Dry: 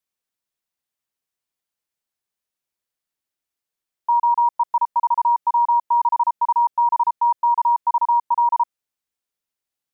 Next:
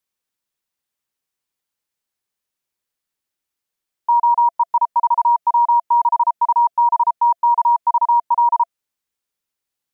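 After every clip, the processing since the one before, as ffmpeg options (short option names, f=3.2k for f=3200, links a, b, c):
-af "bandreject=f=680:w=13,volume=3dB"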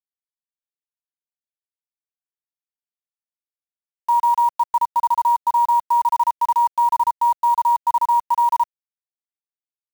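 -af "acrusher=bits=6:dc=4:mix=0:aa=0.000001,volume=-2.5dB"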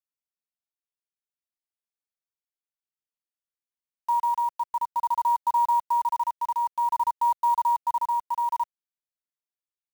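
-af "tremolo=f=0.54:d=0.38,volume=-5dB"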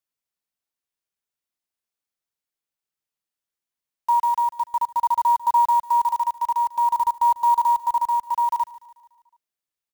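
-af "aecho=1:1:146|292|438|584|730:0.133|0.0707|0.0375|0.0199|0.0105,volume=5dB"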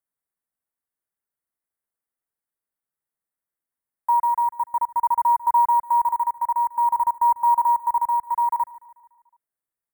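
-af "asuperstop=centerf=4200:order=12:qfactor=0.71"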